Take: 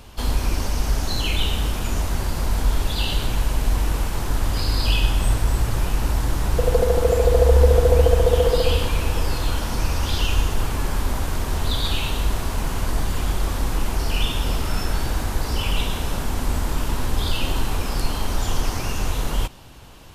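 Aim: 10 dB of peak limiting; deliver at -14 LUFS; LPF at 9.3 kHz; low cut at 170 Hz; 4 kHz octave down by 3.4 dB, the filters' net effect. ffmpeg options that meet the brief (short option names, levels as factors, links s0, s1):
-af "highpass=170,lowpass=9300,equalizer=f=4000:t=o:g=-4.5,volume=5.62,alimiter=limit=1:level=0:latency=1"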